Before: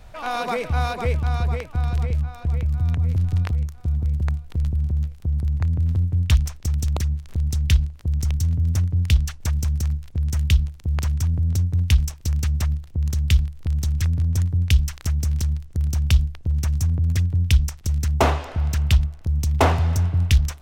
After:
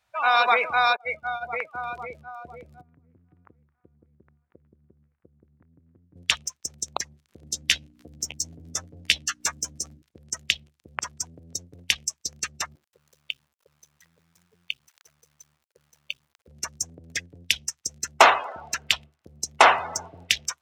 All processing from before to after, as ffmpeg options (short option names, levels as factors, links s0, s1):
-filter_complex "[0:a]asettb=1/sr,asplit=3[s0][s1][s2];[s0]atrim=end=0.964[s3];[s1]atrim=start=0.96:end=1.53,asetpts=PTS-STARTPTS,afade=t=in:d=0.004:c=qsin,afade=t=out:st=0.566:d=0.004:c=qsin,aecho=1:1:1.4:0.66,atrim=end_sample=25137,agate=range=0.0224:threshold=0.251:ratio=3:release=100:detection=peak[s4];[s2]atrim=start=1.526[s5];[s3][s4]acrossfade=d=0.004:c1=hsin:c2=qsin[s6];[s6][s5]acrossfade=d=0.004:c1=qsin:c2=hsin,asettb=1/sr,asplit=3[s7][s8][s9];[s7]atrim=end=2.814[s10];[s8]atrim=start=2.81:end=6.16,asetpts=PTS-STARTPTS,afade=t=in:d=0.004:c=qsin,afade=t=out:st=3.346:d=0.004:c=qsin,lowpass=f=1900:w=0.5412,lowpass=f=1900:w=1.3066,acompressor=threshold=0.0316:ratio=5:attack=3.2:release=140:knee=1:detection=peak[s11];[s9]atrim=start=6.156[s12];[s10][s11]acrossfade=d=0.004:c1=hsin:c2=qsin[s13];[s13][s12]acrossfade=d=0.004:c1=qsin:c2=hsin,asettb=1/sr,asplit=3[s14][s15][s16];[s14]atrim=end=7.424[s17];[s15]atrim=start=7.42:end=10.02,asetpts=PTS-STARTPTS,afade=t=in:d=0.004:c=qsin,afade=t=out:st=2.596:d=0.004:c=qsin,acompressor=mode=upward:threshold=0.0501:ratio=2.5:attack=3.2:release=140:knee=2.83:detection=peak,aeval=exprs='val(0)+0.0141*(sin(2*PI*60*n/s)+sin(2*PI*2*60*n/s)/2+sin(2*PI*3*60*n/s)/3+sin(2*PI*4*60*n/s)/4+sin(2*PI*5*60*n/s)/5)':c=same,asplit=2[s18][s19];[s19]adelay=13,volume=0.562[s20];[s18][s20]amix=inputs=2:normalize=0,atrim=end_sample=114660[s21];[s16]atrim=start=10.016[s22];[s17][s21]acrossfade=d=0.004:c1=hsin:c2=qsin[s23];[s23][s22]acrossfade=d=0.004:c1=qsin:c2=hsin,asettb=1/sr,asplit=3[s24][s25][s26];[s24]atrim=end=12.754[s27];[s25]atrim=start=12.75:end=16.48,asetpts=PTS-STARTPTS,afade=t=in:d=0.004:c=qsin,afade=t=out:st=3.726:d=0.004:c=qsin,lowshelf=f=350:t=q:w=3:g=-10.5,acompressor=threshold=0.0126:ratio=2:attack=3.2:release=140:knee=1:detection=peak,acrusher=bits=5:dc=4:mix=0:aa=0.000001[s28];[s26]atrim=start=16.476[s29];[s27][s28]acrossfade=d=0.004:c1=hsin:c2=qsin[s30];[s30][s29]acrossfade=d=0.004:c1=qsin:c2=hsin,afftdn=nr=27:nf=-34,highpass=1000,alimiter=level_in=3.98:limit=0.891:release=50:level=0:latency=1,volume=0.891"